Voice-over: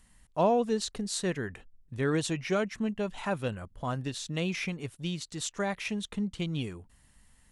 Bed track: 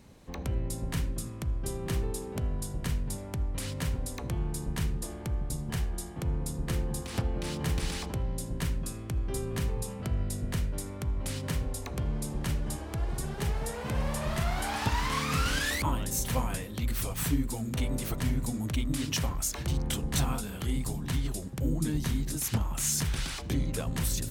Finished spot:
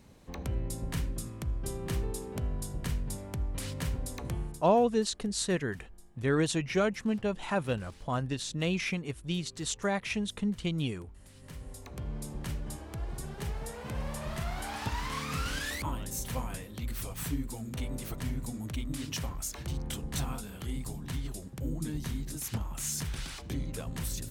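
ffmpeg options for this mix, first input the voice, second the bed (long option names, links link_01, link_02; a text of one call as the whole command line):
ffmpeg -i stem1.wav -i stem2.wav -filter_complex "[0:a]adelay=4250,volume=1dB[link_01];[1:a]volume=14dB,afade=type=out:start_time=4.32:duration=0.34:silence=0.105925,afade=type=in:start_time=11.33:duration=0.84:silence=0.158489[link_02];[link_01][link_02]amix=inputs=2:normalize=0" out.wav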